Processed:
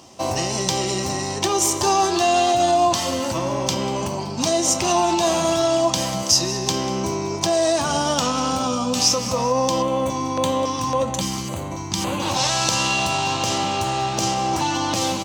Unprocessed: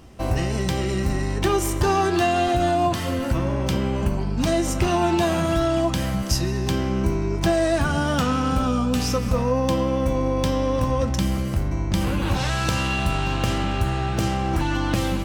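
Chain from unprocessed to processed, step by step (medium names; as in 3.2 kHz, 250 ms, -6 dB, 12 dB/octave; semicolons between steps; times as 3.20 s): high-pass 88 Hz 24 dB/octave; band-stop 450 Hz, Q 12; peak limiter -14.5 dBFS, peak gain reduction 5.5 dB; FFT filter 170 Hz 0 dB, 1 kHz +8 dB, 1.5 kHz -4 dB, 6.3 kHz +11 dB, 11 kHz -3 dB; feedback delay 192 ms, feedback 54%, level -17 dB; 9.82–12.20 s: LFO notch square 1.8 Hz 570–5300 Hz; tilt EQ +1.5 dB/octave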